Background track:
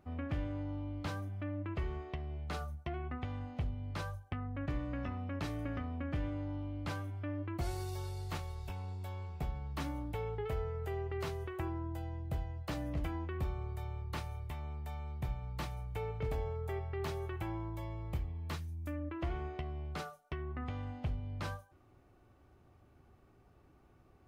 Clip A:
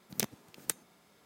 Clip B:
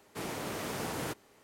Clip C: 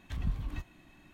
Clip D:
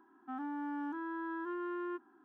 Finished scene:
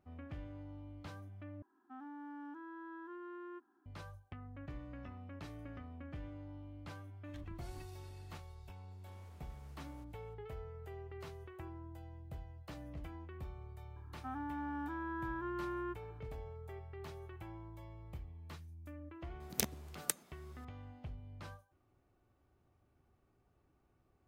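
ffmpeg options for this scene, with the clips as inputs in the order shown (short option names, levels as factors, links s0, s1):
-filter_complex "[4:a]asplit=2[s0][s1];[0:a]volume=0.316[s2];[3:a]acompressor=threshold=0.01:ratio=6:attack=3.2:release=140:knee=1:detection=peak[s3];[2:a]acompressor=threshold=0.00398:ratio=6:attack=3.2:release=140:knee=1:detection=peak[s4];[s1]highpass=280[s5];[s2]asplit=2[s6][s7];[s6]atrim=end=1.624[s8];[s0]atrim=end=2.24,asetpts=PTS-STARTPTS,volume=0.335[s9];[s7]atrim=start=3.856[s10];[s3]atrim=end=1.13,asetpts=PTS-STARTPTS,volume=0.422,afade=t=in:d=0.004:c=hsin,afade=t=out:st=1.126:d=0.004:c=hsin,adelay=7240[s11];[s4]atrim=end=1.43,asetpts=PTS-STARTPTS,volume=0.158,afade=t=in:d=0.004:c=hsin,afade=t=out:st=1.426:d=0.004:c=hsin,adelay=8910[s12];[s5]atrim=end=2.24,asetpts=PTS-STARTPTS,volume=0.944,afade=t=in:d=0.004:c=hsin,afade=t=out:st=2.236:d=0.004:c=hsin,adelay=615636S[s13];[1:a]atrim=end=1.25,asetpts=PTS-STARTPTS,volume=0.794,afade=t=in:d=0.004:c=hsin,afade=t=out:st=1.246:d=0.004:c=hsin,adelay=855540S[s14];[s8][s9]acrossfade=d=0.004:c1=hsin:c2=hsin[s15];[s15][s10]acrossfade=d=0.004:c1=hsin:c2=hsin[s16];[s16][s11][s12][s13][s14]amix=inputs=5:normalize=0"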